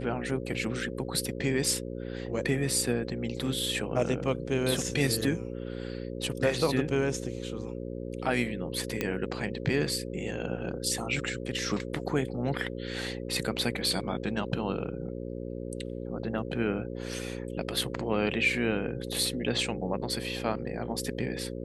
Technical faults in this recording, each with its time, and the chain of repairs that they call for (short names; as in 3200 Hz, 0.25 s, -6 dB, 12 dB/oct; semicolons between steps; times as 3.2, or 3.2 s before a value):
buzz 60 Hz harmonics 9 -37 dBFS
9.01 pop -14 dBFS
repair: de-click; de-hum 60 Hz, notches 9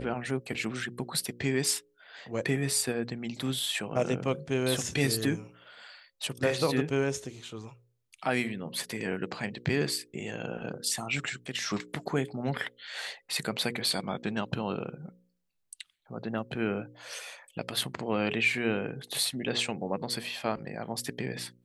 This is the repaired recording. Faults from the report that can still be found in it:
none